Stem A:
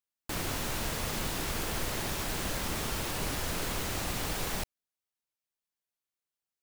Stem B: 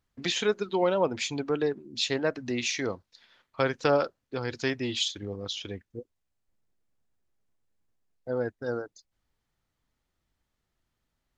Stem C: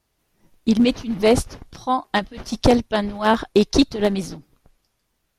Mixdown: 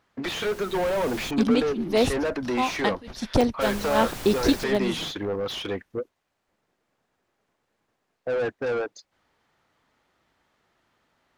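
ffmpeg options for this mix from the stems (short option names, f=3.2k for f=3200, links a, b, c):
-filter_complex "[0:a]dynaudnorm=f=200:g=11:m=10dB,volume=-12.5dB,asplit=3[a][b][c];[a]atrim=end=1.31,asetpts=PTS-STARTPTS,afade=t=out:st=1.306:d=0.004:c=hsin[d];[b]atrim=start=1.31:end=3.61,asetpts=PTS-STARTPTS,volume=0[e];[c]atrim=start=3.61,asetpts=PTS-STARTPTS,afade=t=in:d=0.004:c=hsin[f];[d][e][f]concat=n=3:v=0:a=1[g];[1:a]asplit=2[h][i];[i]highpass=f=720:p=1,volume=36dB,asoftclip=type=tanh:threshold=-8dB[j];[h][j]amix=inputs=2:normalize=0,lowpass=f=1.3k:p=1,volume=-6dB,volume=-9dB[k];[2:a]deesser=0.45,adelay=700,volume=-5.5dB[l];[g][k][l]amix=inputs=3:normalize=0"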